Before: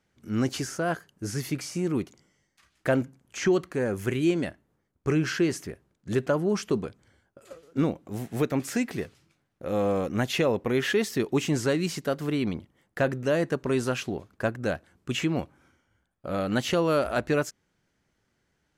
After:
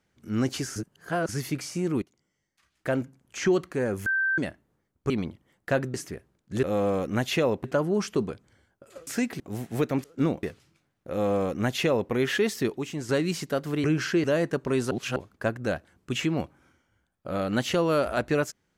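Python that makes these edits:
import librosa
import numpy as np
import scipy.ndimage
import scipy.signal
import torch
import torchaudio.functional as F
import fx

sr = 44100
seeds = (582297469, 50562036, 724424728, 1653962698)

y = fx.edit(x, sr, fx.reverse_span(start_s=0.76, length_s=0.53),
    fx.fade_in_from(start_s=2.02, length_s=1.38, floor_db=-16.5),
    fx.bleep(start_s=4.06, length_s=0.32, hz=1560.0, db=-22.0),
    fx.swap(start_s=5.1, length_s=0.4, other_s=12.39, other_length_s=0.84),
    fx.swap(start_s=7.62, length_s=0.39, other_s=8.65, other_length_s=0.33),
    fx.duplicate(start_s=9.65, length_s=1.01, to_s=6.19),
    fx.clip_gain(start_s=11.32, length_s=0.32, db=-7.5),
    fx.reverse_span(start_s=13.9, length_s=0.25), tone=tone)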